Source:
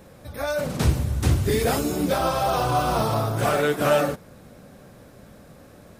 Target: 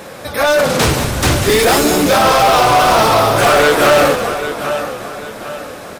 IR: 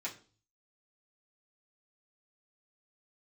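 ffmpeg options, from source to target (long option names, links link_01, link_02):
-filter_complex "[0:a]asplit=2[link_01][link_02];[link_02]aecho=0:1:796|1592|2388:0.141|0.0494|0.0173[link_03];[link_01][link_03]amix=inputs=2:normalize=0,asplit=2[link_04][link_05];[link_05]highpass=frequency=720:poles=1,volume=23dB,asoftclip=type=tanh:threshold=-8dB[link_06];[link_04][link_06]amix=inputs=2:normalize=0,lowpass=frequency=7000:poles=1,volume=-6dB,asplit=2[link_07][link_08];[link_08]asplit=4[link_09][link_10][link_11][link_12];[link_09]adelay=189,afreqshift=-81,volume=-10dB[link_13];[link_10]adelay=378,afreqshift=-162,volume=-19.1dB[link_14];[link_11]adelay=567,afreqshift=-243,volume=-28.2dB[link_15];[link_12]adelay=756,afreqshift=-324,volume=-37.4dB[link_16];[link_13][link_14][link_15][link_16]amix=inputs=4:normalize=0[link_17];[link_07][link_17]amix=inputs=2:normalize=0,volume=4.5dB"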